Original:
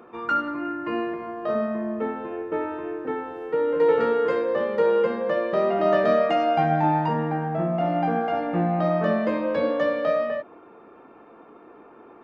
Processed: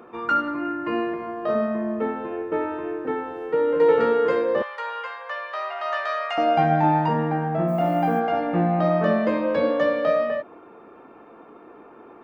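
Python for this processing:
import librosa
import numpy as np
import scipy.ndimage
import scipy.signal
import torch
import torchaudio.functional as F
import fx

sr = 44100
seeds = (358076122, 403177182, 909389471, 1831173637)

y = fx.highpass(x, sr, hz=910.0, slope=24, at=(4.62, 6.38))
y = fx.dmg_noise_colour(y, sr, seeds[0], colour='violet', level_db=-58.0, at=(7.67, 8.19), fade=0.02)
y = F.gain(torch.from_numpy(y), 2.0).numpy()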